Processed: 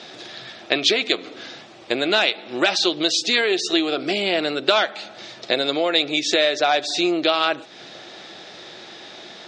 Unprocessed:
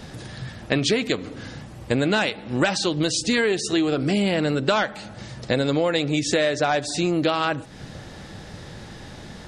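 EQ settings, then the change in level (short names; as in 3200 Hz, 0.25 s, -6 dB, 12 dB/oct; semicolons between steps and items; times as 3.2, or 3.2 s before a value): speaker cabinet 300–6100 Hz, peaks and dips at 360 Hz +9 dB, 680 Hz +9 dB, 1300 Hz +4 dB, 2400 Hz +5 dB, 3600 Hz +7 dB; high shelf 2000 Hz +9 dB; -4.0 dB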